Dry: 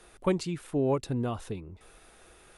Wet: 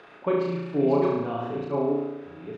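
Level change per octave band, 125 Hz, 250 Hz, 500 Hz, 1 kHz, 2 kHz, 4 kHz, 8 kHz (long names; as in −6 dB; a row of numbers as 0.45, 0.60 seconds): 0.0 dB, +5.0 dB, +7.5 dB, +7.0 dB, +4.5 dB, can't be measured, below −15 dB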